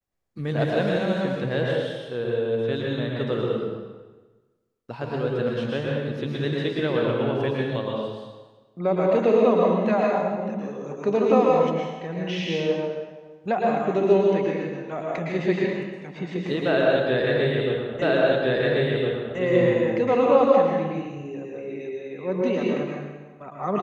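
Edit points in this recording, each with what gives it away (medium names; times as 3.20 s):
18.02 s: repeat of the last 1.36 s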